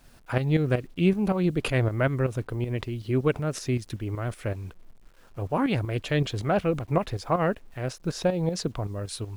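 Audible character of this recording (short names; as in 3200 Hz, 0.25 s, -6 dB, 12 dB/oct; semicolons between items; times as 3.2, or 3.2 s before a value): tremolo saw up 5.3 Hz, depth 65%; a quantiser's noise floor 10-bit, dither none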